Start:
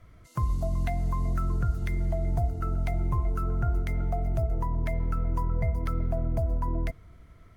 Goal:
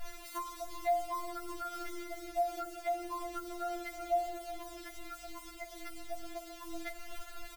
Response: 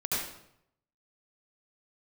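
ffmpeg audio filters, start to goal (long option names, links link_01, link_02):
-filter_complex "[0:a]acompressor=threshold=-33dB:ratio=5,asettb=1/sr,asplit=3[link_01][link_02][link_03];[link_01]atrim=end=1.084[link_04];[link_02]atrim=start=1.08:end=3.47,asetpts=PTS-STARTPTS,afade=type=in:duration=0.004:curve=qsin,afade=type=out:start_time=2.386:duration=0.004:curve=qsin,adynamicequalizer=threshold=0.00158:dfrequency=1500:dqfactor=1.9:tfrequency=1500:tqfactor=1.9:attack=5:release=100:ratio=0.375:range=2.5:mode=boostabove:tftype=bell[link_05];[link_03]atrim=start=3.466[link_06];[link_04][link_05]acrossfade=duration=0.004:curve1=hsin:curve2=qsin[link_07];[link_07][link_06]acrossfade=duration=0.004:curve1=qsin:curve2=hsin,acrusher=bits=8:mix=0:aa=0.000001,lowshelf=frequency=380:gain=-3.5,aecho=1:1:1.4:0.44,alimiter=level_in=9.5dB:limit=-24dB:level=0:latency=1:release=45,volume=-9.5dB,afftfilt=real='re*4*eq(mod(b,16),0)':imag='im*4*eq(mod(b,16),0)':win_size=2048:overlap=0.75,volume=10.5dB"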